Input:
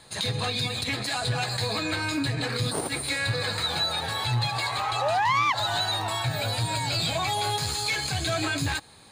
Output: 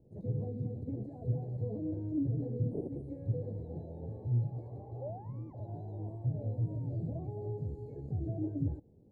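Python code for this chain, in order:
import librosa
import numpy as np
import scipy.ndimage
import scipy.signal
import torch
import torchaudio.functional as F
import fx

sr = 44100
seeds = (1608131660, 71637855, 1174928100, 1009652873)

y = scipy.signal.sosfilt(scipy.signal.cheby2(4, 50, 1200.0, 'lowpass', fs=sr, output='sos'), x)
y = F.gain(torch.from_numpy(y), -3.5).numpy()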